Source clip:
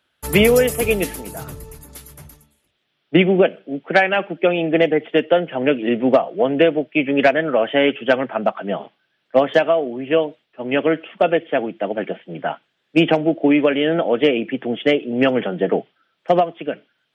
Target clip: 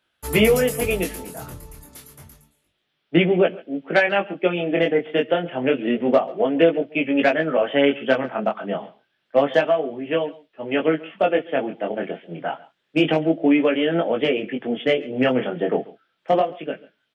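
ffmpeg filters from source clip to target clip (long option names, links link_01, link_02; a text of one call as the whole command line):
ffmpeg -i in.wav -filter_complex "[0:a]flanger=delay=17.5:depth=6.5:speed=0.29,asplit=2[link_01][link_02];[link_02]aecho=0:1:138:0.0891[link_03];[link_01][link_03]amix=inputs=2:normalize=0" out.wav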